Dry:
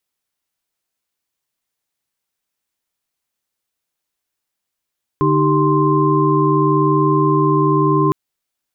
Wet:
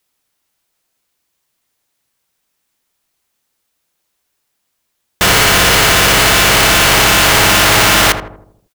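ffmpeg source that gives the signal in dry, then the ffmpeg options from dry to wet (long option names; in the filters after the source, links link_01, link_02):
-f lavfi -i "aevalsrc='0.141*(sin(2*PI*146.83*t)+sin(2*PI*311.13*t)+sin(2*PI*392*t)+sin(2*PI*1046.5*t))':duration=2.91:sample_rate=44100"
-filter_complex "[0:a]apsyclip=10.5dB,aeval=exprs='(mod(1.78*val(0)+1,2)-1)/1.78':channel_layout=same,asplit=2[link_01][link_02];[link_02]adelay=80,lowpass=frequency=990:poles=1,volume=-6.5dB,asplit=2[link_03][link_04];[link_04]adelay=80,lowpass=frequency=990:poles=1,volume=0.53,asplit=2[link_05][link_06];[link_06]adelay=80,lowpass=frequency=990:poles=1,volume=0.53,asplit=2[link_07][link_08];[link_08]adelay=80,lowpass=frequency=990:poles=1,volume=0.53,asplit=2[link_09][link_10];[link_10]adelay=80,lowpass=frequency=990:poles=1,volume=0.53,asplit=2[link_11][link_12];[link_12]adelay=80,lowpass=frequency=990:poles=1,volume=0.53,asplit=2[link_13][link_14];[link_14]adelay=80,lowpass=frequency=990:poles=1,volume=0.53[link_15];[link_01][link_03][link_05][link_07][link_09][link_11][link_13][link_15]amix=inputs=8:normalize=0"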